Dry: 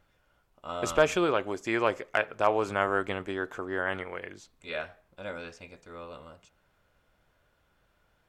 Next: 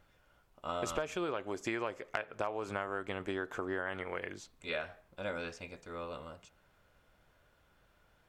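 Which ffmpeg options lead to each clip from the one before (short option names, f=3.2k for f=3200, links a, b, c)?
-af "acompressor=threshold=-33dB:ratio=12,volume=1dB"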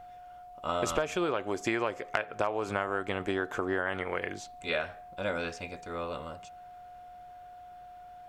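-af "aeval=exprs='val(0)+0.00251*sin(2*PI*720*n/s)':c=same,volume=6dB"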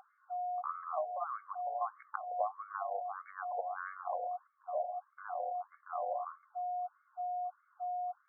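-filter_complex "[0:a]asplit=3[a][b][c];[a]bandpass=f=730:t=q:w=8,volume=0dB[d];[b]bandpass=f=1.09k:t=q:w=8,volume=-6dB[e];[c]bandpass=f=2.44k:t=q:w=8,volume=-9dB[f];[d][e][f]amix=inputs=3:normalize=0,acompressor=threshold=-42dB:ratio=6,afftfilt=real='re*between(b*sr/1024,660*pow(1600/660,0.5+0.5*sin(2*PI*1.6*pts/sr))/1.41,660*pow(1600/660,0.5+0.5*sin(2*PI*1.6*pts/sr))*1.41)':imag='im*between(b*sr/1024,660*pow(1600/660,0.5+0.5*sin(2*PI*1.6*pts/sr))/1.41,660*pow(1600/660,0.5+0.5*sin(2*PI*1.6*pts/sr))*1.41)':win_size=1024:overlap=0.75,volume=12dB"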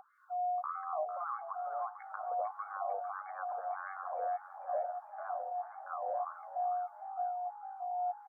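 -filter_complex "[0:a]alimiter=level_in=7.5dB:limit=-24dB:level=0:latency=1:release=37,volume=-7.5dB,acrossover=split=1000[a][b];[a]aeval=exprs='val(0)*(1-0.7/2+0.7/2*cos(2*PI*2.1*n/s))':c=same[c];[b]aeval=exprs='val(0)*(1-0.7/2-0.7/2*cos(2*PI*2.1*n/s))':c=same[d];[c][d]amix=inputs=2:normalize=0,asplit=2[e][f];[f]asplit=6[g][h][i][j][k][l];[g]adelay=449,afreqshift=54,volume=-11dB[m];[h]adelay=898,afreqshift=108,volume=-16.7dB[n];[i]adelay=1347,afreqshift=162,volume=-22.4dB[o];[j]adelay=1796,afreqshift=216,volume=-28dB[p];[k]adelay=2245,afreqshift=270,volume=-33.7dB[q];[l]adelay=2694,afreqshift=324,volume=-39.4dB[r];[m][n][o][p][q][r]amix=inputs=6:normalize=0[s];[e][s]amix=inputs=2:normalize=0,volume=5.5dB"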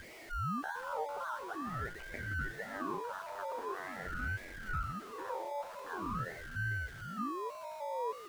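-af "aeval=exprs='val(0)+0.5*0.00668*sgn(val(0))':c=same,aeval=exprs='val(0)*sin(2*PI*490*n/s+490*0.7/0.45*sin(2*PI*0.45*n/s))':c=same"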